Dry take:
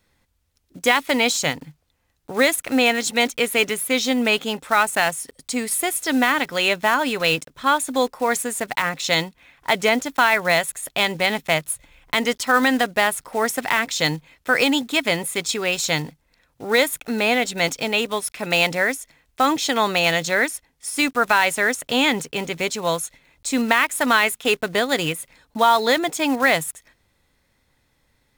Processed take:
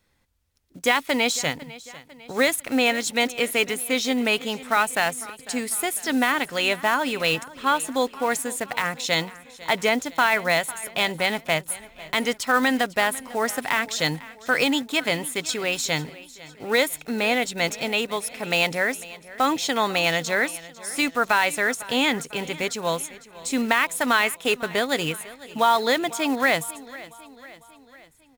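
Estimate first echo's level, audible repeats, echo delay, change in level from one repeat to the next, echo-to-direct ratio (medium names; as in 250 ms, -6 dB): -19.0 dB, 3, 500 ms, -5.5 dB, -17.5 dB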